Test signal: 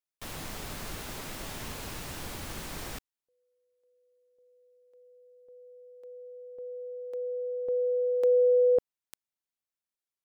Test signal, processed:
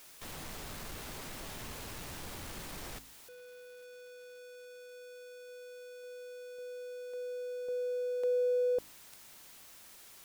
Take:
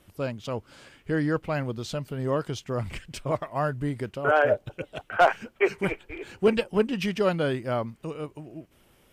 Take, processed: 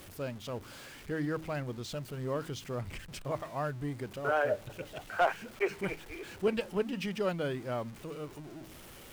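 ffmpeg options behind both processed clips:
-af "aeval=exprs='val(0)+0.5*0.0141*sgn(val(0))':c=same,bandreject=f=53.3:t=h:w=4,bandreject=f=106.6:t=h:w=4,bandreject=f=159.9:t=h:w=4,bandreject=f=213.2:t=h:w=4,bandreject=f=266.5:t=h:w=4,bandreject=f=319.8:t=h:w=4,volume=-8.5dB"

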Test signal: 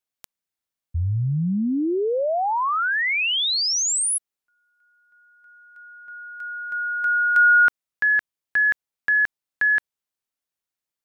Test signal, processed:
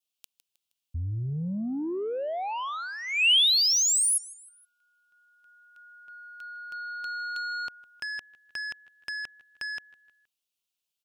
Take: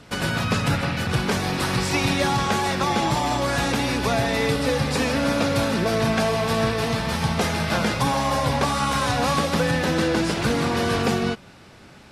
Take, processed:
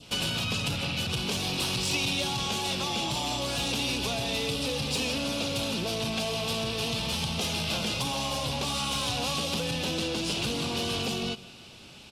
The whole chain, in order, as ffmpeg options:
-af "acompressor=threshold=-21dB:ratio=6:attack=30:release=208:knee=6:detection=rms,aecho=1:1:157|314|471:0.075|0.0337|0.0152,adynamicequalizer=threshold=0.0112:dfrequency=1700:dqfactor=1.4:tfrequency=1700:tqfactor=1.4:attack=5:release=100:ratio=0.375:range=1.5:mode=cutabove:tftype=bell,asoftclip=type=tanh:threshold=-21dB,highshelf=f=2.3k:t=q:w=3:g=6.5,volume=-4.5dB"

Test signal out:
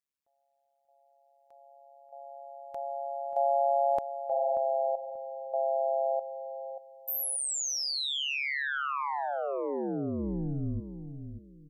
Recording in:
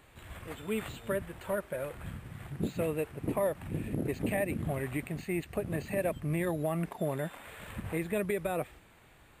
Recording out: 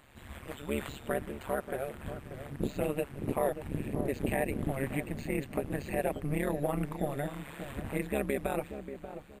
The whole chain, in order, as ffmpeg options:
-filter_complex "[0:a]tremolo=f=140:d=1,asplit=2[a][b];[b]adelay=585,lowpass=f=870:p=1,volume=-9dB,asplit=2[c][d];[d]adelay=585,lowpass=f=870:p=1,volume=0.29,asplit=2[e][f];[f]adelay=585,lowpass=f=870:p=1,volume=0.29[g];[a][c][e][g]amix=inputs=4:normalize=0,volume=4dB"

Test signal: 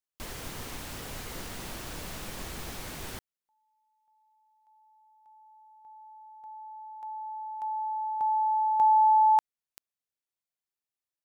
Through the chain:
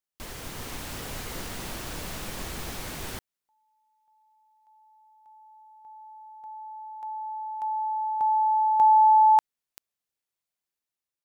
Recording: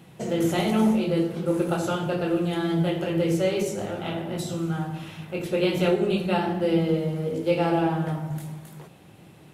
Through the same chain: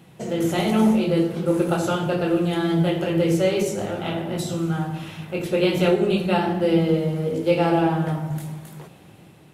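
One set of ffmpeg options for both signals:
-af "dynaudnorm=f=240:g=5:m=3.5dB"

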